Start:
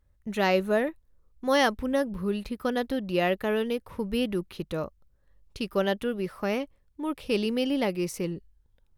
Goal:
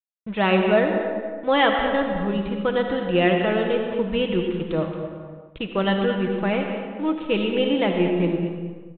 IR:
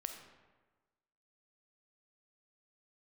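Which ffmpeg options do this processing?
-filter_complex "[0:a]aecho=1:1:6.1:0.48,aresample=8000,aeval=exprs='sgn(val(0))*max(abs(val(0))-0.00447,0)':c=same,aresample=44100,aecho=1:1:225|450:0.237|0.0403[s0];[1:a]atrim=start_sample=2205,afade=t=out:st=0.41:d=0.01,atrim=end_sample=18522,asetrate=24255,aresample=44100[s1];[s0][s1]afir=irnorm=-1:irlink=0,volume=1.68"

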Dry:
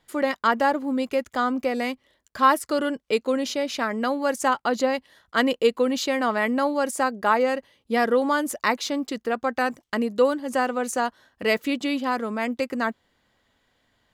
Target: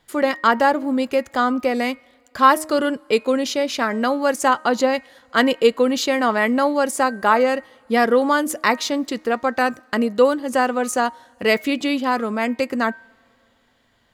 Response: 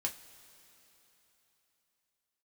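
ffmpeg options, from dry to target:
-filter_complex "[0:a]bandreject=f=311.8:t=h:w=4,bandreject=f=623.6:t=h:w=4,bandreject=f=935.4:t=h:w=4,bandreject=f=1247.2:t=h:w=4,bandreject=f=1559:t=h:w=4,bandreject=f=1870.8:t=h:w=4,bandreject=f=2182.6:t=h:w=4,bandreject=f=2494.4:t=h:w=4,asplit=2[s0][s1];[1:a]atrim=start_sample=2205,asetrate=52920,aresample=44100[s2];[s1][s2]afir=irnorm=-1:irlink=0,volume=0.133[s3];[s0][s3]amix=inputs=2:normalize=0,volume=1.58"

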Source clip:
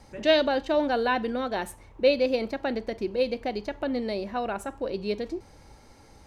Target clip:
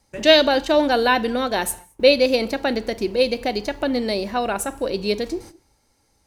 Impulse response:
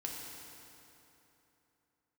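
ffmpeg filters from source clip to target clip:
-filter_complex "[0:a]agate=range=0.1:threshold=0.00562:ratio=16:detection=peak,crystalizer=i=2.5:c=0,asplit=2[s0][s1];[1:a]atrim=start_sample=2205,afade=t=out:st=0.28:d=0.01,atrim=end_sample=12789[s2];[s1][s2]afir=irnorm=-1:irlink=0,volume=0.158[s3];[s0][s3]amix=inputs=2:normalize=0,volume=1.88"

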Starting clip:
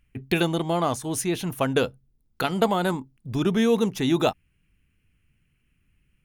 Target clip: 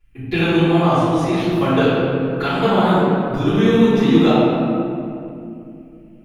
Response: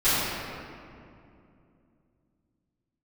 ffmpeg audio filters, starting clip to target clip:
-filter_complex "[0:a]acrossover=split=4900[s0][s1];[s1]acompressor=threshold=0.00251:ratio=4:attack=1:release=60[s2];[s0][s2]amix=inputs=2:normalize=0[s3];[1:a]atrim=start_sample=2205[s4];[s3][s4]afir=irnorm=-1:irlink=0,volume=0.335"

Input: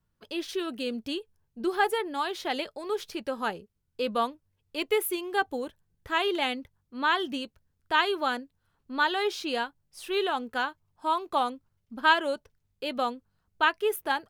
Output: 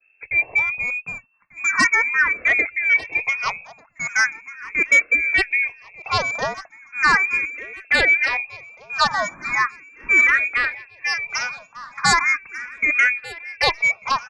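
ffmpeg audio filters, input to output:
-filter_complex "[0:a]lowpass=f=2300:t=q:w=0.5098,lowpass=f=2300:t=q:w=0.6013,lowpass=f=2300:t=q:w=0.9,lowpass=f=2300:t=q:w=2.563,afreqshift=-2700,acrossover=split=300[s0][s1];[s0]acompressor=threshold=0.001:ratio=6[s2];[s2][s1]amix=inputs=2:normalize=0,adynamicequalizer=threshold=0.0141:dfrequency=2000:dqfactor=1.7:tfrequency=2000:tqfactor=1.7:attack=5:release=100:ratio=0.375:range=2:mode=cutabove:tftype=bell,areverse,acompressor=mode=upward:threshold=0.00398:ratio=2.5,areverse,aeval=exprs='0.355*sin(PI/2*3.98*val(0)/0.355)':c=same,lowshelf=f=400:g=4.5,aecho=1:1:1193|2386|3579|4772:0.126|0.0655|0.034|0.0177,asplit=2[s3][s4];[s4]afreqshift=0.38[s5];[s3][s5]amix=inputs=2:normalize=1"

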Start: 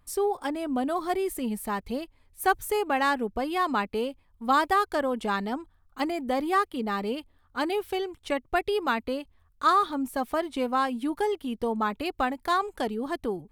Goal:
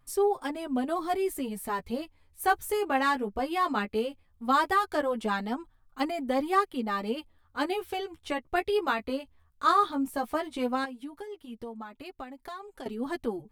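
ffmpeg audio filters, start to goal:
-filter_complex "[0:a]asettb=1/sr,asplit=3[s0][s1][s2];[s0]atrim=end=3.754[s3];[s1]atrim=start=3.75:end=4.44,asetpts=PTS-STARTPTS,afade=t=in:d=0.004:c=qsin,afade=t=out:st=0.686:d=0.004:c=qsin,bandreject=f=960:w=5.8[s4];[s2]atrim=start=4.436[s5];[s3][s4]acrossfade=d=0.004:c1=hsin:c2=qsin[s6];[s6][s5]acrossfade=d=0.004:c1=qsin:c2=hsin,asettb=1/sr,asplit=3[s7][s8][s9];[s7]atrim=end=10.844[s10];[s8]atrim=start=10.84:end=12.86,asetpts=PTS-STARTPTS,afade=t=in:d=0.004:c=qsin,afade=t=out:st=2.016:d=0.004:c=qsin,acompressor=threshold=0.0126:ratio=6[s11];[s9]atrim=start=12.856[s12];[s10][s11]acrossfade=d=0.004:c1=hsin:c2=qsin[s13];[s13][s12]acrossfade=d=0.004:c1=qsin:c2=hsin,flanger=delay=7.4:depth=7.7:regen=8:speed=0.16:shape=sinusoidal,volume=1.19"

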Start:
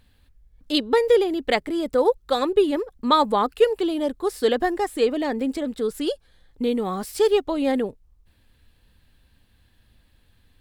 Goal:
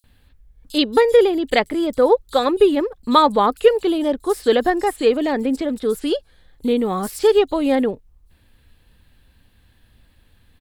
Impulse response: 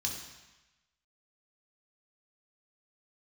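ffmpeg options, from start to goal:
-filter_complex "[0:a]acrossover=split=5400[s0][s1];[s0]adelay=40[s2];[s2][s1]amix=inputs=2:normalize=0,volume=1.68"

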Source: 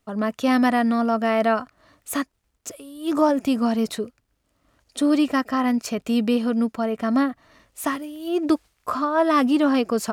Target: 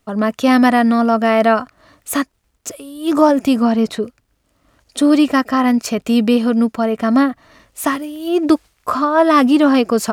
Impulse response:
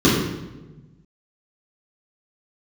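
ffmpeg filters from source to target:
-filter_complex "[0:a]asettb=1/sr,asplit=3[s0][s1][s2];[s0]atrim=end=3.624[s3];[s1]atrim=start=3.62:end=4.03,asetpts=PTS-STARTPTS,afade=t=in:d=0.004:c=qsin,afade=t=out:st=0.406:d=0.004:c=qsin,lowpass=f=3400:p=1[s4];[s2]atrim=start=4.026[s5];[s3][s4]acrossfade=d=0.004:c1=hsin:c2=qsin[s6];[s6][s5]acrossfade=d=0.004:c1=qsin:c2=hsin,volume=2.24"

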